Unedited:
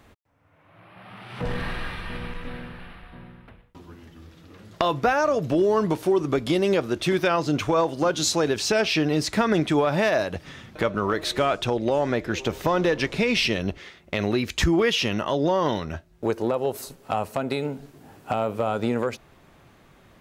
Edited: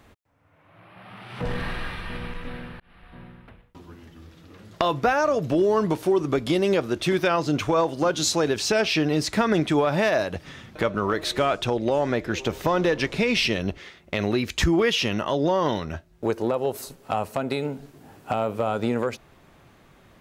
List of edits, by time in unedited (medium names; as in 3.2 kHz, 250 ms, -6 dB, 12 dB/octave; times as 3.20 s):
2.80–3.20 s: fade in